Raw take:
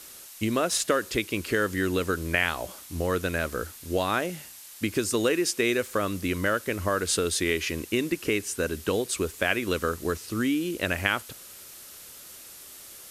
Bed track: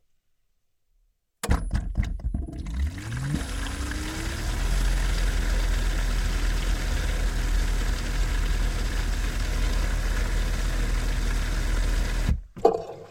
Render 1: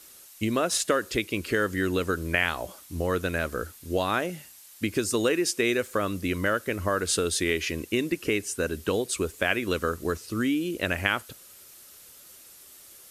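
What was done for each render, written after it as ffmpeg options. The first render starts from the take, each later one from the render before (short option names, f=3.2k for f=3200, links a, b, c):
-af "afftdn=nr=6:nf=-46"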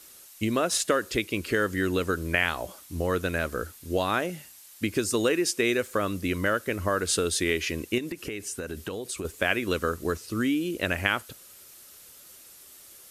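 -filter_complex "[0:a]asettb=1/sr,asplit=3[a][b][c];[a]atrim=end=7.984[d];[b]atrim=start=7.98:end=9.25,asetpts=PTS-STARTPTS,afade=t=in:d=0.004:c=qsin,afade=t=out:st=1.266:d=0.004:c=qsin,acompressor=threshold=-29dB:ratio=12:attack=3.2:release=140:knee=1:detection=peak[e];[c]atrim=start=9.246[f];[d][e]acrossfade=d=0.004:c1=hsin:c2=qsin[g];[g][f]acrossfade=d=0.004:c1=qsin:c2=hsin"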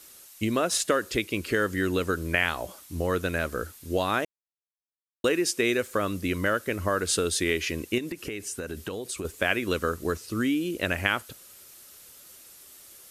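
-filter_complex "[0:a]asplit=3[a][b][c];[a]atrim=end=4.25,asetpts=PTS-STARTPTS,afade=t=out:st=4.246:d=0.004:c=hsin[d];[b]atrim=start=4.25:end=5.24,asetpts=PTS-STARTPTS,volume=0[e];[c]atrim=start=5.24,asetpts=PTS-STARTPTS,afade=t=in:d=0.004:c=hsin[f];[d][e][f]concat=n=3:v=0:a=1"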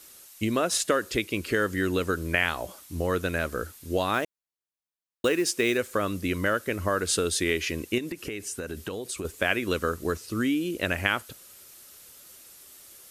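-filter_complex "[0:a]asettb=1/sr,asplit=3[a][b][c];[a]atrim=end=4.144[d];[b]atrim=start=4.14:end=5.78,asetpts=PTS-STARTPTS,afade=t=in:d=0.004:c=qsin,afade=t=out:st=1.636:d=0.004:c=qsin,acrusher=bits=6:mode=log:mix=0:aa=0.000001[e];[c]atrim=start=5.776[f];[d][e]acrossfade=d=0.004:c1=hsin:c2=qsin[g];[g][f]acrossfade=d=0.004:c1=qsin:c2=hsin"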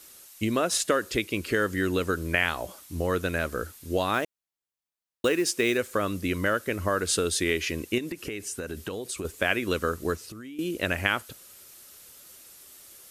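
-filter_complex "[0:a]asettb=1/sr,asplit=3[a][b][c];[a]atrim=end=10.154[d];[b]atrim=start=10.15:end=10.59,asetpts=PTS-STARTPTS,afade=t=in:d=0.004:c=qsin,afade=t=out:st=0.436:d=0.004:c=qsin,acompressor=threshold=-38dB:ratio=16:attack=3.2:release=140:knee=1:detection=peak[e];[c]atrim=start=10.586[f];[d][e]acrossfade=d=0.004:c1=hsin:c2=qsin[g];[g][f]acrossfade=d=0.004:c1=qsin:c2=hsin"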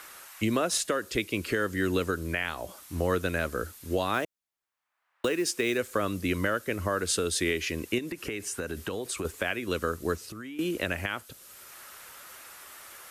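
-filter_complex "[0:a]acrossover=split=220|800|2000[a][b][c][d];[c]acompressor=mode=upward:threshold=-37dB:ratio=2.5[e];[a][b][e][d]amix=inputs=4:normalize=0,alimiter=limit=-15.5dB:level=0:latency=1:release=445"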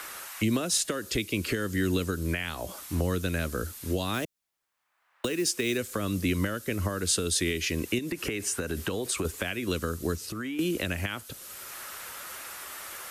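-filter_complex "[0:a]acrossover=split=290|3000[a][b][c];[b]acompressor=threshold=-37dB:ratio=6[d];[a][d][c]amix=inputs=3:normalize=0,asplit=2[e][f];[f]alimiter=level_in=3dB:limit=-24dB:level=0:latency=1:release=357,volume=-3dB,volume=1dB[g];[e][g]amix=inputs=2:normalize=0"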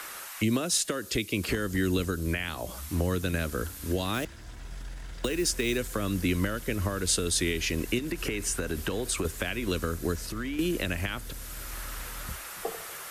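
-filter_complex "[1:a]volume=-16dB[a];[0:a][a]amix=inputs=2:normalize=0"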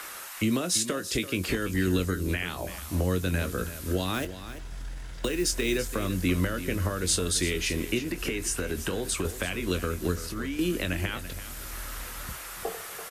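-filter_complex "[0:a]asplit=2[a][b];[b]adelay=22,volume=-10.5dB[c];[a][c]amix=inputs=2:normalize=0,aecho=1:1:337:0.237"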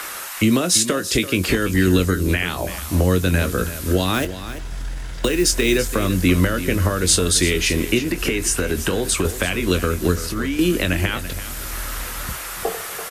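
-af "volume=9.5dB"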